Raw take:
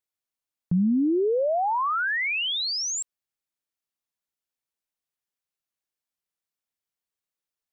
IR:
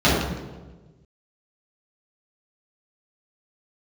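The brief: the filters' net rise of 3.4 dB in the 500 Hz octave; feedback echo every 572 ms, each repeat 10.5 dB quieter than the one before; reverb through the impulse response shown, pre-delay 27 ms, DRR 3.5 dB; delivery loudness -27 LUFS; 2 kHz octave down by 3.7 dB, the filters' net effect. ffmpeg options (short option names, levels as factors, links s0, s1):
-filter_complex "[0:a]equalizer=f=500:t=o:g=4.5,equalizer=f=2000:t=o:g=-5,aecho=1:1:572|1144|1716:0.299|0.0896|0.0269,asplit=2[s0][s1];[1:a]atrim=start_sample=2205,adelay=27[s2];[s1][s2]afir=irnorm=-1:irlink=0,volume=0.0473[s3];[s0][s3]amix=inputs=2:normalize=0,volume=0.422"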